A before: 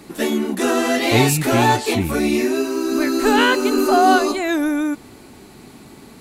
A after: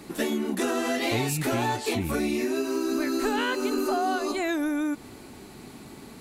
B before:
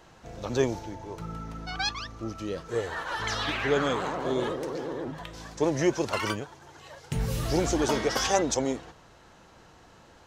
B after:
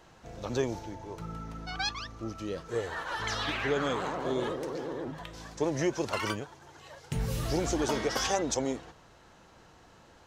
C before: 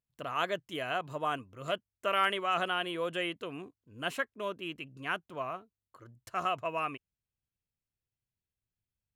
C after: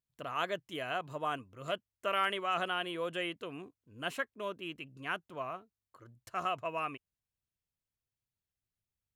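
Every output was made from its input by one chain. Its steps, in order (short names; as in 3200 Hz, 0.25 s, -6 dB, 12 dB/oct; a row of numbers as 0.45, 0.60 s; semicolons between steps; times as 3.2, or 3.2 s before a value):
compressor, threshold -21 dBFS; gain -2.5 dB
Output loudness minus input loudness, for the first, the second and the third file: -9.5, -3.5, -2.5 LU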